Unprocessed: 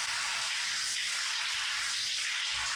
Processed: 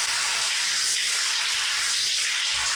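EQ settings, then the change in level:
parametric band 430 Hz +11.5 dB 0.66 octaves
high-shelf EQ 4,900 Hz +7.5 dB
+5.5 dB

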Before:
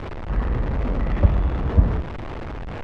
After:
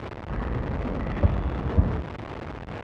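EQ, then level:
high-pass filter 73 Hz 12 dB per octave
−2.0 dB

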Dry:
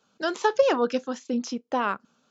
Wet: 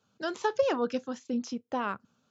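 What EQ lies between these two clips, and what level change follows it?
parametric band 100 Hz +14.5 dB 1.2 octaves
−6.5 dB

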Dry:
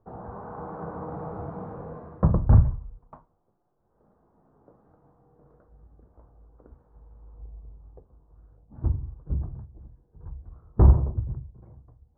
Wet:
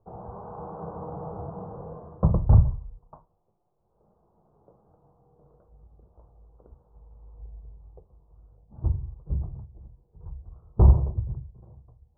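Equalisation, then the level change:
low-pass filter 1,100 Hz 24 dB per octave
parametric band 270 Hz −11.5 dB 0.35 octaves
0.0 dB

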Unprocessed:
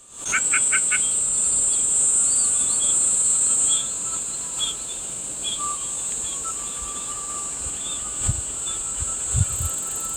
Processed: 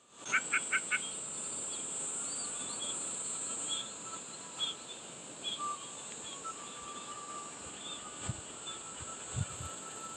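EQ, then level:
band-pass filter 160–4,200 Hz
−7.5 dB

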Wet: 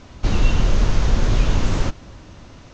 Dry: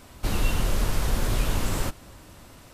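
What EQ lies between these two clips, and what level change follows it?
elliptic low-pass filter 6,600 Hz, stop band 50 dB
low-shelf EQ 420 Hz +5.5 dB
+3.5 dB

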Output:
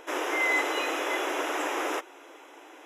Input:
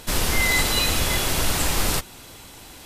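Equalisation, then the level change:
moving average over 10 samples
linear-phase brick-wall high-pass 280 Hz
0.0 dB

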